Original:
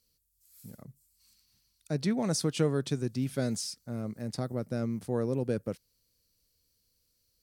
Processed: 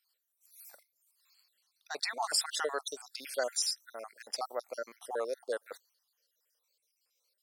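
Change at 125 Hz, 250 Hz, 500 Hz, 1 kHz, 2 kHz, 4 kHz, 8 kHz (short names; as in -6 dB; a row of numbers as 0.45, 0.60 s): under -40 dB, -25.0 dB, -4.0 dB, +5.5 dB, +5.5 dB, +5.0 dB, +3.0 dB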